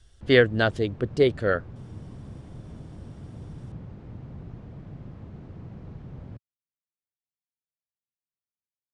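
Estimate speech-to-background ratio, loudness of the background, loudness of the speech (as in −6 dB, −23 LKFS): 19.5 dB, −42.5 LKFS, −23.0 LKFS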